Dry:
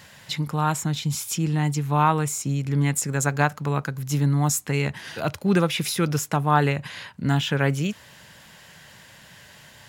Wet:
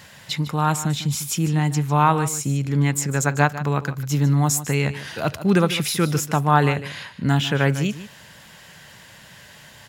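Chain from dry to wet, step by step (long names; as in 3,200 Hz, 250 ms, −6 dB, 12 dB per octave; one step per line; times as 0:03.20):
0:02.75–0:04.38: parametric band 9,900 Hz −7.5 dB 0.33 octaves
on a send: single-tap delay 150 ms −14 dB
on the sum: level +2.5 dB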